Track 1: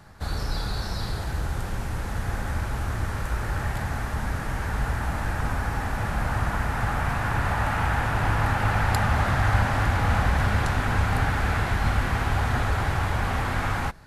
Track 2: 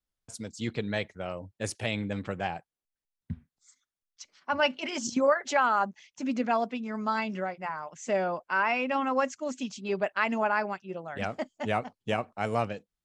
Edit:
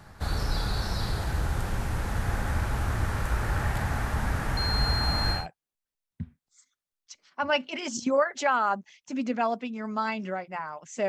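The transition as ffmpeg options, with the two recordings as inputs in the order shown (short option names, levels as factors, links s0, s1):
-filter_complex "[0:a]asettb=1/sr,asplit=3[s0][s1][s2];[s0]atrim=end=4.574[s3];[s1]atrim=start=4.57:end=5.47,asetpts=PTS-STARTPTS,afade=t=in:d=0.004:c=qsin,afade=t=out:st=0.896:d=0.004:c=qsin,aeval=exprs='val(0)+0.0355*sin(2*PI*4200*n/s)':c=same[s4];[s2]atrim=start=5.466[s5];[s3][s4]acrossfade=d=0.004:c1=hsin:c2=qsin[s6];[s6][s5]acrossfade=d=0.004:c1=qsin:c2=hsin,apad=whole_dur=11.08,atrim=end=11.08,atrim=end=5.47,asetpts=PTS-STARTPTS[s7];[1:a]atrim=start=2.41:end=8.18,asetpts=PTS-STARTPTS[s8];[s7][s8]acrossfade=d=0.16:c1=tri:c2=tri"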